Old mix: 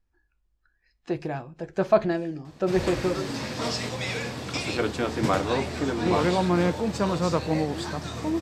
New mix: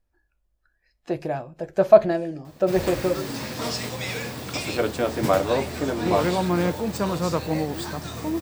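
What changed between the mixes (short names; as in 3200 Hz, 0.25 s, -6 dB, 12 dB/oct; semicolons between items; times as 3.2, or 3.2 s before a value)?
speech: add bell 600 Hz +9.5 dB 0.47 oct; master: remove LPF 7400 Hz 12 dB/oct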